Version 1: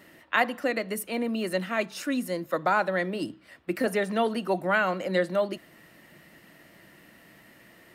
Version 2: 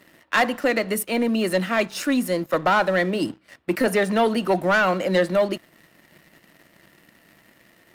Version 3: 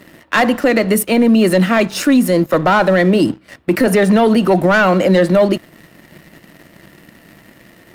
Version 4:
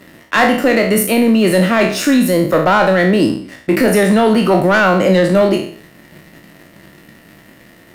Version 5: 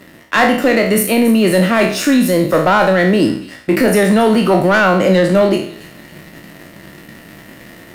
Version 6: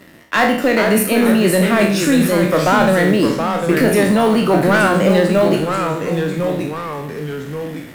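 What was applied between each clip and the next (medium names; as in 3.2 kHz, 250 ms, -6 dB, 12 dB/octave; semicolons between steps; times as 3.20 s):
waveshaping leveller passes 2
bass shelf 450 Hz +7 dB; peak limiter -13.5 dBFS, peak gain reduction 6 dB; trim +8.5 dB
spectral sustain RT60 0.54 s; trim -1 dB
reverse; upward compressor, threshold -28 dBFS; reverse; feedback echo behind a high-pass 279 ms, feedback 44%, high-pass 2.8 kHz, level -14 dB
short-mantissa float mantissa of 4-bit; ever faster or slower copies 397 ms, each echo -2 st, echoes 2, each echo -6 dB; trim -2.5 dB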